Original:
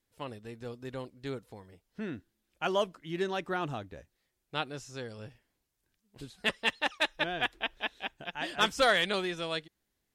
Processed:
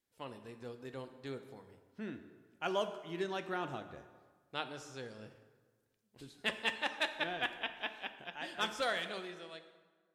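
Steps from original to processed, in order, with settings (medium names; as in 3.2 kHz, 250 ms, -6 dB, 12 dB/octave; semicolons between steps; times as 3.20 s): fade out at the end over 2.16 s; bass shelf 66 Hz -11 dB; hum notches 50/100/150 Hz; plate-style reverb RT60 1.5 s, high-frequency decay 0.65×, DRR 8 dB; trim -5.5 dB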